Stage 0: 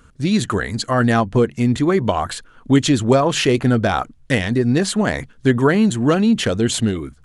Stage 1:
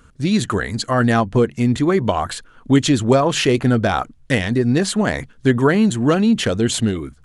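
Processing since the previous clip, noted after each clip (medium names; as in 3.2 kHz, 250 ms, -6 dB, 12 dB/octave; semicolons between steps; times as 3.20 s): no audible change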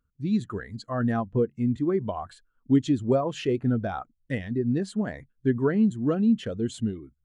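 spectral contrast expander 1.5:1; trim -8 dB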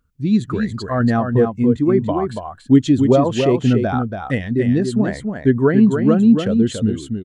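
delay 283 ms -6 dB; trim +9 dB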